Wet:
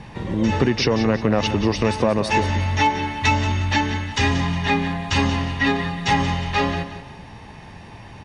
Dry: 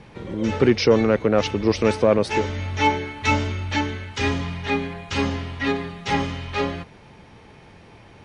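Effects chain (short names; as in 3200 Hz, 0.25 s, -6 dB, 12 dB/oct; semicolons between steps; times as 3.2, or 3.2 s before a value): comb 1.1 ms, depth 41%; compressor, threshold -20 dBFS, peak gain reduction 8.5 dB; feedback echo 0.18 s, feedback 36%, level -11.5 dB; gain +5.5 dB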